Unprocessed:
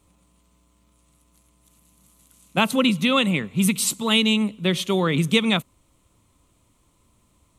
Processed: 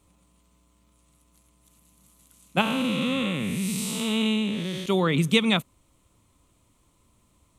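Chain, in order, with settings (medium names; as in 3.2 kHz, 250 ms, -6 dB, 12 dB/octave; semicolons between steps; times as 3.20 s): 2.61–4.86 s: spectral blur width 336 ms; trim -1.5 dB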